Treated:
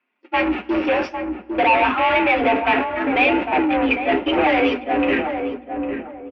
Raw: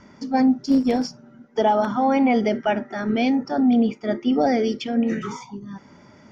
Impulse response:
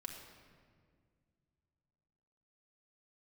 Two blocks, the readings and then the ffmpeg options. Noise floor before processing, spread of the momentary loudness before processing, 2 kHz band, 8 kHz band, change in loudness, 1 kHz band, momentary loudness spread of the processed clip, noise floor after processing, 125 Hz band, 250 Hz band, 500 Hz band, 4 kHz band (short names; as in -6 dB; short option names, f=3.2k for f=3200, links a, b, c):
-50 dBFS, 12 LU, +12.5 dB, n/a, +2.0 dB, +5.5 dB, 10 LU, -47 dBFS, -3.0 dB, -2.0 dB, +3.0 dB, +6.5 dB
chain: -filter_complex "[0:a]aeval=exprs='val(0)+0.5*0.0251*sgn(val(0))':c=same,highpass=f=60:w=0.5412,highpass=f=60:w=1.3066,agate=range=-52dB:threshold=-23dB:ratio=16:detection=peak,aecho=1:1:5.9:0.58,asplit=2[a][b];[b]highpass=f=720:p=1,volume=26dB,asoftclip=type=tanh:threshold=-4.5dB[c];[a][c]amix=inputs=2:normalize=0,lowpass=f=1.2k:p=1,volume=-6dB,afreqshift=58,asoftclip=type=tanh:threshold=-10dB,lowpass=f=2.6k:t=q:w=6,flanger=delay=8:depth=7.8:regen=-77:speed=0.86:shape=triangular,asplit=2[d][e];[e]adelay=803,lowpass=f=800:p=1,volume=-4.5dB,asplit=2[f][g];[g]adelay=803,lowpass=f=800:p=1,volume=0.34,asplit=2[h][i];[i]adelay=803,lowpass=f=800:p=1,volume=0.34,asplit=2[j][k];[k]adelay=803,lowpass=f=800:p=1,volume=0.34[l];[d][f][h][j][l]amix=inputs=5:normalize=0,asplit=2[m][n];[1:a]atrim=start_sample=2205,asetrate=39249,aresample=44100[o];[n][o]afir=irnorm=-1:irlink=0,volume=-14dB[p];[m][p]amix=inputs=2:normalize=0"